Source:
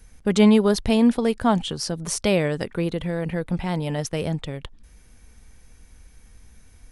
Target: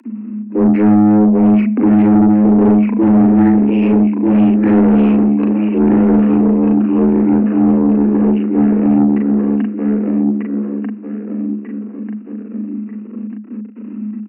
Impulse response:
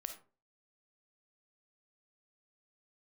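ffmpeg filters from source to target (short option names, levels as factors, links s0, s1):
-filter_complex "[0:a]aecho=1:1:601|1202|1803|2404:0.708|0.241|0.0818|0.0278,aresample=11025,aeval=exprs='max(val(0),0)':c=same,aresample=44100,agate=range=0.0224:threshold=0.00224:ratio=3:detection=peak,flanger=delay=17.5:depth=3:speed=0.29,acompressor=mode=upward:threshold=0.0112:ratio=2.5,asetrate=21344,aresample=44100,bass=f=250:g=13,treble=f=4000:g=4,acompressor=threshold=0.355:ratio=12,afreqshift=210,asoftclip=type=tanh:threshold=0.224,asplit=2[s0][s1];[1:a]atrim=start_sample=2205,asetrate=35280,aresample=44100[s2];[s1][s2]afir=irnorm=-1:irlink=0,volume=0.266[s3];[s0][s3]amix=inputs=2:normalize=0,volume=2"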